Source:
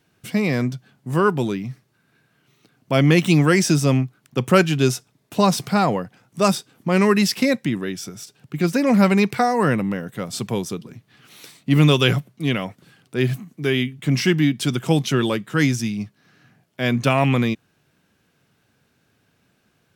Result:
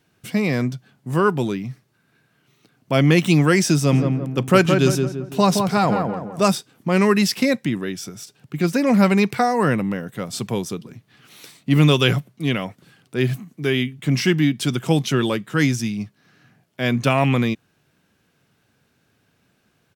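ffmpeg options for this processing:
ffmpeg -i in.wav -filter_complex "[0:a]asplit=3[link_01][link_02][link_03];[link_01]afade=type=out:start_time=3.91:duration=0.02[link_04];[link_02]asplit=2[link_05][link_06];[link_06]adelay=169,lowpass=frequency=1400:poles=1,volume=-4dB,asplit=2[link_07][link_08];[link_08]adelay=169,lowpass=frequency=1400:poles=1,volume=0.46,asplit=2[link_09][link_10];[link_10]adelay=169,lowpass=frequency=1400:poles=1,volume=0.46,asplit=2[link_11][link_12];[link_12]adelay=169,lowpass=frequency=1400:poles=1,volume=0.46,asplit=2[link_13][link_14];[link_14]adelay=169,lowpass=frequency=1400:poles=1,volume=0.46,asplit=2[link_15][link_16];[link_16]adelay=169,lowpass=frequency=1400:poles=1,volume=0.46[link_17];[link_05][link_07][link_09][link_11][link_13][link_15][link_17]amix=inputs=7:normalize=0,afade=type=in:start_time=3.91:duration=0.02,afade=type=out:start_time=6.52:duration=0.02[link_18];[link_03]afade=type=in:start_time=6.52:duration=0.02[link_19];[link_04][link_18][link_19]amix=inputs=3:normalize=0" out.wav

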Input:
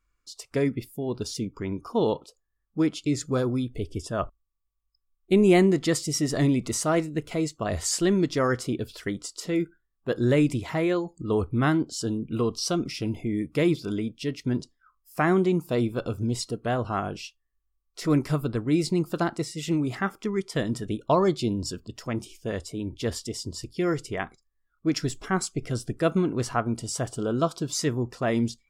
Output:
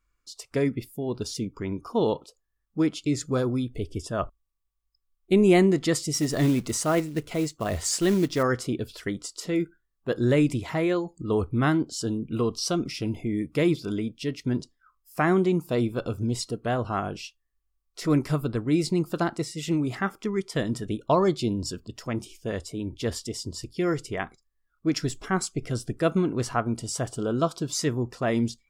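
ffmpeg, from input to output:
ffmpeg -i in.wav -filter_complex "[0:a]asettb=1/sr,asplit=3[link_01][link_02][link_03];[link_01]atrim=end=6.144[link_04];[link_02]atrim=start=6.14:end=8.43,asetpts=PTS-STARTPTS,afade=type=in:duration=0.004:curve=qsin,afade=type=out:start_time=2.286:duration=0.004:curve=qsin,acrusher=bits=5:mode=log:mix=0:aa=0.000001[link_05];[link_03]atrim=start=8.426[link_06];[link_04][link_05]acrossfade=duration=0.004:curve1=hsin:curve2=qsin[link_07];[link_07][link_06]acrossfade=duration=0.004:curve1=qsin:curve2=hsin" out.wav

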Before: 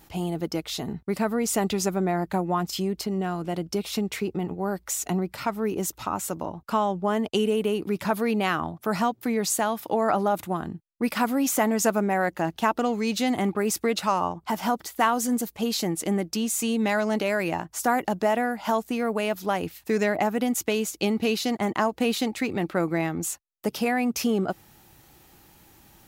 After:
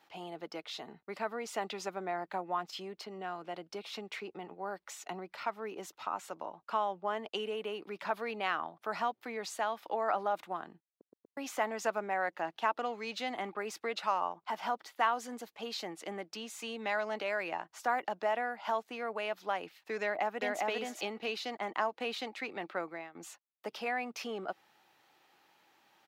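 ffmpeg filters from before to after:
ffmpeg -i in.wav -filter_complex "[0:a]asplit=2[link_01][link_02];[link_02]afade=type=in:start_time=20.01:duration=0.01,afade=type=out:start_time=20.62:duration=0.01,aecho=0:1:400|800:0.841395|0.0841395[link_03];[link_01][link_03]amix=inputs=2:normalize=0,asplit=6[link_04][link_05][link_06][link_07][link_08][link_09];[link_04]atrim=end=11.012[link_10];[link_05]atrim=start=10.888:end=11.012[link_11];[link_06]atrim=start=10.888:end=11.012[link_12];[link_07]atrim=start=10.888:end=11.012[link_13];[link_08]atrim=start=11.368:end=23.15,asetpts=PTS-STARTPTS,afade=type=out:start_time=11.382:duration=0.4:silence=0.133352[link_14];[link_09]atrim=start=23.15,asetpts=PTS-STARTPTS,afade=type=in:duration=0.004:curve=hsin:silence=0.133352[link_15];[link_10][link_11]acrossfade=duration=0.004:curve1=hsin:curve2=hsin[link_16];[link_16][link_12]acrossfade=duration=0.004:curve1=hsin:curve2=hsin[link_17];[link_17][link_13]acrossfade=duration=0.004:curve1=hsin:curve2=hsin[link_18];[link_14][link_15]concat=n=2:v=0:a=1[link_19];[link_18][link_19]acrossfade=duration=0.004:curve1=hsin:curve2=hsin,highpass=210,acrossover=split=500 4700:gain=0.224 1 0.126[link_20][link_21][link_22];[link_20][link_21][link_22]amix=inputs=3:normalize=0,volume=-6.5dB" out.wav

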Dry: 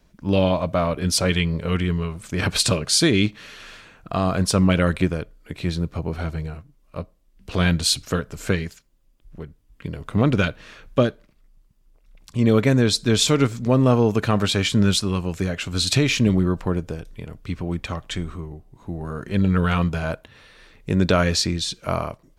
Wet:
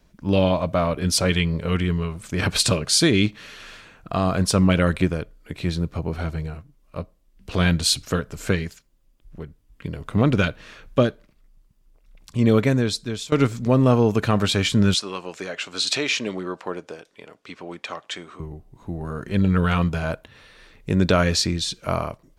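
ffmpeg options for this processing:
ffmpeg -i in.wav -filter_complex "[0:a]asettb=1/sr,asplit=3[link_01][link_02][link_03];[link_01]atrim=end=14.944[link_04];[link_02]atrim=start=14.94:end=18.4,asetpts=PTS-STARTPTS,afade=type=in:duration=0.004:curve=qsin,afade=type=out:start_time=3.456:duration=0.004:curve=qsin,highpass=440,lowpass=7600[link_05];[link_03]atrim=start=18.396[link_06];[link_04][link_05]acrossfade=duration=0.004:curve1=hsin:curve2=qsin[link_07];[link_07][link_06]acrossfade=duration=0.004:curve1=qsin:curve2=hsin,asplit=2[link_08][link_09];[link_08]atrim=end=13.32,asetpts=PTS-STARTPTS,afade=type=out:start_time=12.54:duration=0.78:silence=0.0841395[link_10];[link_09]atrim=start=13.32,asetpts=PTS-STARTPTS,afade=type=in:duration=0.004:curve=hsin:silence=0.0841395[link_11];[link_10][link_11]concat=n=2:v=0:a=1" out.wav

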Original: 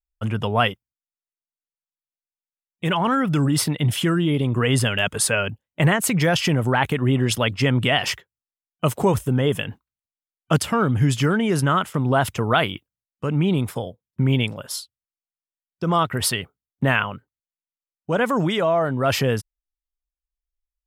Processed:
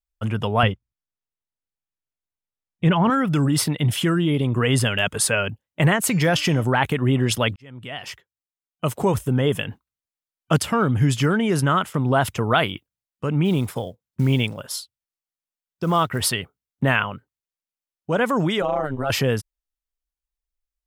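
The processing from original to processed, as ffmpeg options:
ffmpeg -i in.wav -filter_complex "[0:a]asettb=1/sr,asplit=3[link_01][link_02][link_03];[link_01]atrim=end=0.634[link_04];[link_02]atrim=start=0.63:end=3.1,asetpts=PTS-STARTPTS,afade=type=in:duration=0.004:curve=qsin,afade=type=out:start_time=2.466:duration=0.004:curve=qsin,aemphasis=mode=reproduction:type=bsi[link_05];[link_03]atrim=start=3.096[link_06];[link_04][link_05]acrossfade=duration=0.004:curve1=hsin:curve2=qsin[link_07];[link_07][link_06]acrossfade=duration=0.004:curve1=qsin:curve2=hsin,asplit=3[link_08][link_09][link_10];[link_08]afade=type=out:start_time=6.07:duration=0.02[link_11];[link_09]bandreject=frequency=299.2:width_type=h:width=4,bandreject=frequency=598.4:width_type=h:width=4,bandreject=frequency=897.6:width_type=h:width=4,bandreject=frequency=1196.8:width_type=h:width=4,bandreject=frequency=1496:width_type=h:width=4,bandreject=frequency=1795.2:width_type=h:width=4,bandreject=frequency=2094.4:width_type=h:width=4,bandreject=frequency=2393.6:width_type=h:width=4,bandreject=frequency=2692.8:width_type=h:width=4,bandreject=frequency=2992:width_type=h:width=4,bandreject=frequency=3291.2:width_type=h:width=4,bandreject=frequency=3590.4:width_type=h:width=4,bandreject=frequency=3889.6:width_type=h:width=4,bandreject=frequency=4188.8:width_type=h:width=4,bandreject=frequency=4488:width_type=h:width=4,bandreject=frequency=4787.2:width_type=h:width=4,bandreject=frequency=5086.4:width_type=h:width=4,bandreject=frequency=5385.6:width_type=h:width=4,bandreject=frequency=5684.8:width_type=h:width=4,bandreject=frequency=5984:width_type=h:width=4,bandreject=frequency=6283.2:width_type=h:width=4,bandreject=frequency=6582.4:width_type=h:width=4,bandreject=frequency=6881.6:width_type=h:width=4,bandreject=frequency=7180.8:width_type=h:width=4,afade=type=in:start_time=6.07:duration=0.02,afade=type=out:start_time=6.63:duration=0.02[link_12];[link_10]afade=type=in:start_time=6.63:duration=0.02[link_13];[link_11][link_12][link_13]amix=inputs=3:normalize=0,asplit=3[link_14][link_15][link_16];[link_14]afade=type=out:start_time=13.44:duration=0.02[link_17];[link_15]acrusher=bits=8:mode=log:mix=0:aa=0.000001,afade=type=in:start_time=13.44:duration=0.02,afade=type=out:start_time=16.27:duration=0.02[link_18];[link_16]afade=type=in:start_time=16.27:duration=0.02[link_19];[link_17][link_18][link_19]amix=inputs=3:normalize=0,asettb=1/sr,asplit=3[link_20][link_21][link_22];[link_20]atrim=end=18.624[link_23];[link_21]atrim=start=18.62:end=19.1,asetpts=PTS-STARTPTS,afade=type=in:duration=0.004:curve=qsin,afade=type=out:start_time=0.476:duration=0.004:curve=qsin,tremolo=f=140:d=0.947[link_24];[link_22]atrim=start=19.096[link_25];[link_23][link_24]acrossfade=duration=0.004:curve1=hsin:curve2=qsin[link_26];[link_26][link_25]acrossfade=duration=0.004:curve1=qsin:curve2=hsin,asplit=2[link_27][link_28];[link_27]atrim=end=7.56,asetpts=PTS-STARTPTS,afade=type=out:start_time=7.556:duration=0.004:curve=hsin[link_29];[link_28]atrim=start=7.56,asetpts=PTS-STARTPTS,afade=type=in:duration=1.81[link_30];[link_29][link_30]concat=n=2:v=0:a=1" out.wav

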